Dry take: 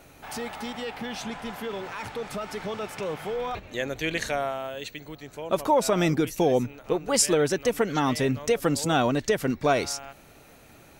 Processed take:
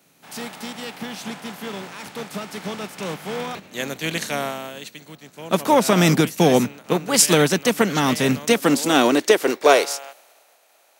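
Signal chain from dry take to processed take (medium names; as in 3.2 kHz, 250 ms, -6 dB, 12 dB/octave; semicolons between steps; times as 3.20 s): spectral contrast reduction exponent 0.64; high-pass sweep 180 Hz -> 630 Hz, 8.31–10.26 s; three bands expanded up and down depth 40%; trim +3.5 dB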